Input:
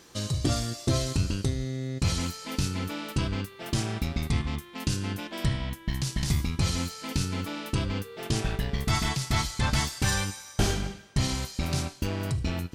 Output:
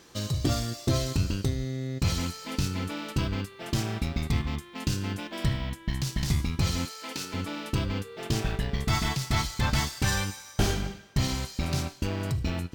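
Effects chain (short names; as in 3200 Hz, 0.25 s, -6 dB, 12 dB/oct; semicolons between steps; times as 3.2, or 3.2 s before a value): 6.85–7.34 HPF 370 Hz 12 dB/oct; decimation joined by straight lines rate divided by 2×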